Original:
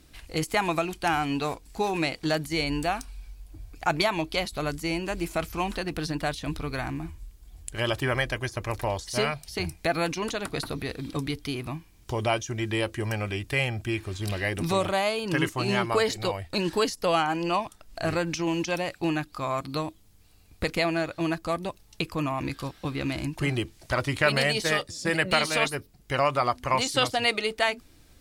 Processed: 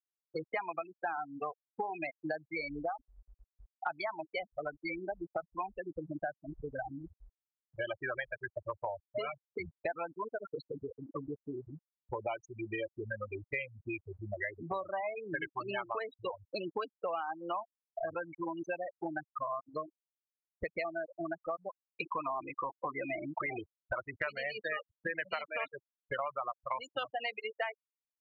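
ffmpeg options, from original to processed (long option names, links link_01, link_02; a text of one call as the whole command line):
ffmpeg -i in.wav -filter_complex "[0:a]asettb=1/sr,asplit=3[link_01][link_02][link_03];[link_01]atrim=end=22.044[link_04];[link_02]atrim=start=22.04:end=23.59,asetpts=PTS-STARTPTS,afade=type=in:duration=0.004:curve=qsin,afade=type=out:start_time=1.546:duration=0.004:curve=qsin,asplit=2[link_05][link_06];[link_06]highpass=frequency=720:poles=1,volume=25dB,asoftclip=type=tanh:threshold=-15dB[link_07];[link_05][link_07]amix=inputs=2:normalize=0,lowpass=frequency=1600:poles=1,volume=-6dB[link_08];[link_03]atrim=start=23.586[link_09];[link_04][link_08]acrossfade=duration=0.004:curve1=hsin:curve2=qsin[link_10];[link_10][link_09]acrossfade=duration=0.004:curve1=qsin:curve2=hsin,afftfilt=real='re*gte(hypot(re,im),0.126)':imag='im*gte(hypot(re,im),0.126)':win_size=1024:overlap=0.75,acrossover=split=520 2600:gain=0.0891 1 0.178[link_11][link_12][link_13];[link_11][link_12][link_13]amix=inputs=3:normalize=0,acompressor=threshold=-43dB:ratio=6,volume=8dB" out.wav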